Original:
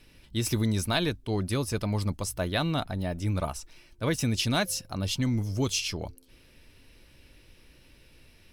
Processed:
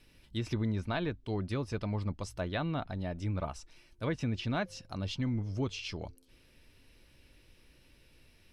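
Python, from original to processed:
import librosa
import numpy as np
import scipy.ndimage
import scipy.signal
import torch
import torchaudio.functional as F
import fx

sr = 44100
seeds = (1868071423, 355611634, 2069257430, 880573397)

y = fx.env_lowpass_down(x, sr, base_hz=2200.0, full_db=-23.0)
y = F.gain(torch.from_numpy(y), -5.5).numpy()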